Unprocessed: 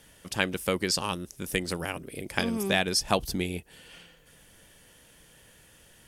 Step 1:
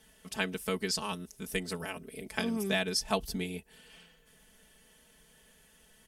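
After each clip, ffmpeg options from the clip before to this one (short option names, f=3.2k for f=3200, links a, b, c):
-af "aecho=1:1:4.6:0.94,volume=-8dB"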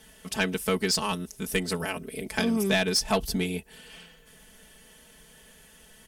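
-af "asoftclip=type=tanh:threshold=-23.5dB,volume=8dB"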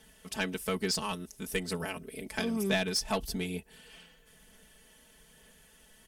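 -af "aphaser=in_gain=1:out_gain=1:delay=3.6:decay=0.2:speed=1.1:type=sinusoidal,volume=-6dB"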